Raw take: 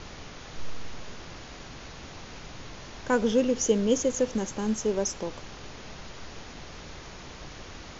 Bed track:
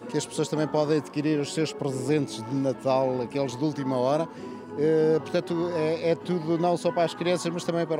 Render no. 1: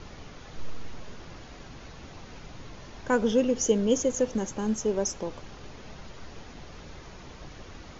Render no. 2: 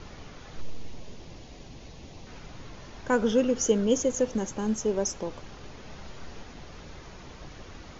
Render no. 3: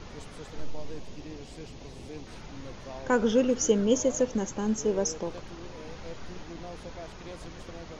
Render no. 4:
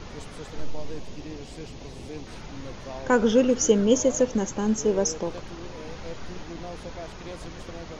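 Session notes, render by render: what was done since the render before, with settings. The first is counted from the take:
broadband denoise 6 dB, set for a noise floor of −44 dBFS
0:00.61–0:02.27: parametric band 1,400 Hz −10.5 dB 0.96 octaves; 0:03.18–0:03.84: parametric band 1,400 Hz +6.5 dB 0.39 octaves; 0:05.88–0:06.43: double-tracking delay 30 ms −7 dB
mix in bed track −19.5 dB
level +4 dB

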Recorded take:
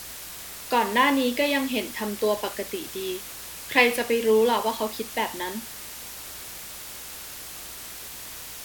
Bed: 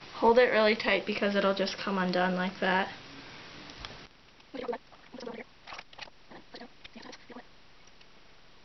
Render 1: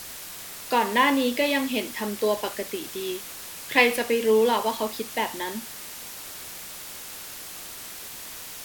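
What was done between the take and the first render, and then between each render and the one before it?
hum removal 60 Hz, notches 2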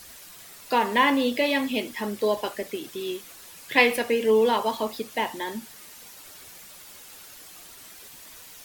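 broadband denoise 9 dB, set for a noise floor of −40 dBFS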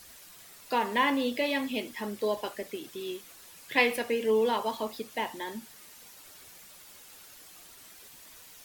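level −5.5 dB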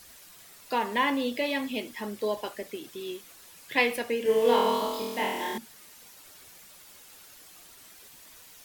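0:04.23–0:05.58: flutter between parallel walls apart 4.2 metres, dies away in 1.1 s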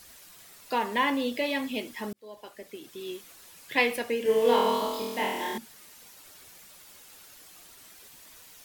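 0:02.13–0:03.18: fade in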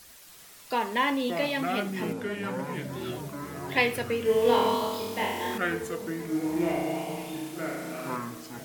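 delay with pitch and tempo change per echo 273 ms, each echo −6 semitones, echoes 3, each echo −6 dB
echo through a band-pass that steps 485 ms, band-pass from 160 Hz, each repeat 0.7 octaves, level −8 dB

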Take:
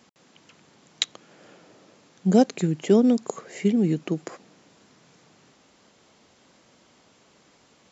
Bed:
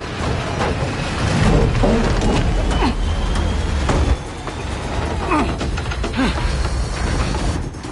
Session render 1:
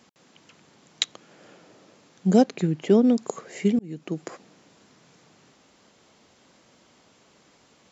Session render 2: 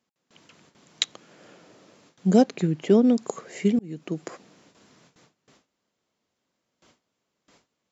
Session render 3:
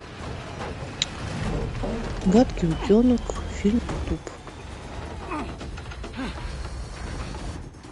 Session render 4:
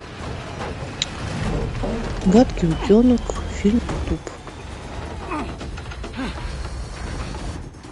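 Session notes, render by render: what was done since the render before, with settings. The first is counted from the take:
0:02.41–0:03.18: high-frequency loss of the air 87 metres; 0:03.79–0:04.29: fade in
notch filter 810 Hz, Q 22; noise gate with hold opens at −46 dBFS
mix in bed −13.5 dB
level +4 dB; brickwall limiter −1 dBFS, peak gain reduction 2.5 dB

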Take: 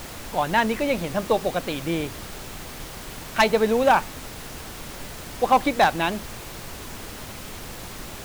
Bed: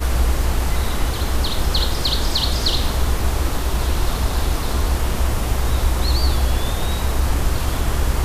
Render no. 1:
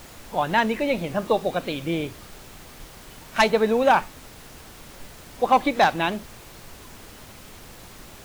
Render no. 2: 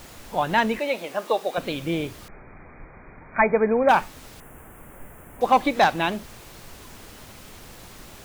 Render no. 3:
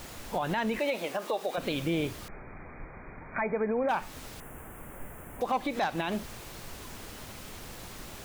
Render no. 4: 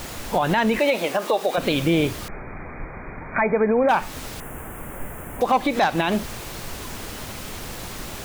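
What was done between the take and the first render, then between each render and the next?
noise reduction from a noise print 7 dB
0:00.79–0:01.58: high-pass filter 430 Hz; 0:02.28–0:03.89: linear-phase brick-wall low-pass 2,500 Hz; 0:04.40–0:05.41: Butterworth band-reject 4,600 Hz, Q 0.61
downward compressor, threshold −22 dBFS, peak gain reduction 9.5 dB; brickwall limiter −21 dBFS, peak gain reduction 9 dB
level +10 dB

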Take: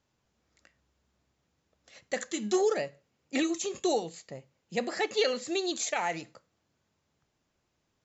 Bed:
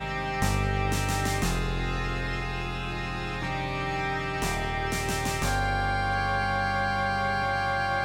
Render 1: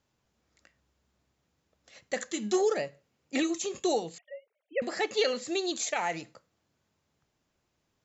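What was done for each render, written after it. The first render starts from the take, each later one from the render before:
0:04.18–0:04.82: three sine waves on the formant tracks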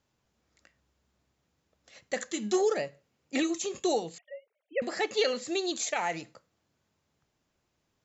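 no processing that can be heard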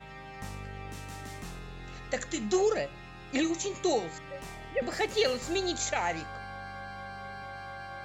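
mix in bed −15 dB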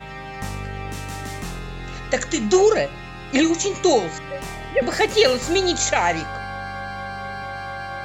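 level +11 dB

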